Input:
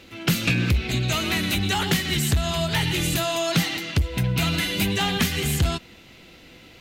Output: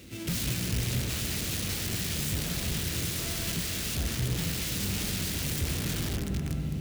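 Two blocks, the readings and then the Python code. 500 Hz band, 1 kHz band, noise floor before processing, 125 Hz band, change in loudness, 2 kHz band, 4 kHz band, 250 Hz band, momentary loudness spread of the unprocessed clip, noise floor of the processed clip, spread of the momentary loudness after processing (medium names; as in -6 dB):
-11.5 dB, -15.0 dB, -49 dBFS, -7.0 dB, -7.5 dB, -11.5 dB, -8.5 dB, -8.5 dB, 3 LU, -34 dBFS, 2 LU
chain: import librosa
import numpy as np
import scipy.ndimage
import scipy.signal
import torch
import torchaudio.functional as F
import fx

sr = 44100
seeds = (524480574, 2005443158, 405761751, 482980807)

p1 = fx.halfwave_hold(x, sr)
p2 = fx.low_shelf(p1, sr, hz=180.0, db=-10.5)
p3 = p2 + fx.echo_feedback(p2, sr, ms=256, feedback_pct=52, wet_db=-22.5, dry=0)
p4 = fx.rev_freeverb(p3, sr, rt60_s=4.7, hf_ratio=0.3, predelay_ms=10, drr_db=1.5)
p5 = fx.over_compress(p4, sr, threshold_db=-25.0, ratio=-0.5)
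p6 = p4 + (p5 * 10.0 ** (-1.5 / 20.0))
p7 = (np.mod(10.0 ** (14.0 / 20.0) * p6 + 1.0, 2.0) - 1.0) / 10.0 ** (14.0 / 20.0)
p8 = scipy.signal.sosfilt(scipy.signal.butter(2, 60.0, 'highpass', fs=sr, output='sos'), p7)
p9 = fx.tone_stack(p8, sr, knobs='10-0-1')
y = p9 * 10.0 ** (8.0 / 20.0)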